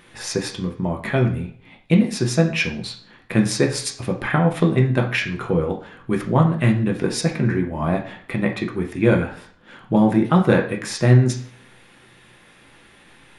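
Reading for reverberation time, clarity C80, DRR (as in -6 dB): 0.55 s, 14.5 dB, 1.0 dB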